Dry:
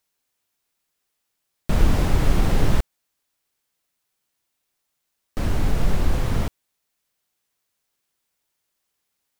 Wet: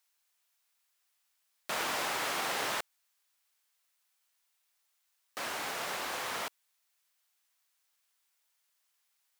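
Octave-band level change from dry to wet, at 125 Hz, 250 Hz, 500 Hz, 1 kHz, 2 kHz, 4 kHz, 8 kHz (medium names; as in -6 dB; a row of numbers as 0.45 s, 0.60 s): -34.5 dB, -21.5 dB, -10.0 dB, -2.5 dB, 0.0 dB, 0.0 dB, 0.0 dB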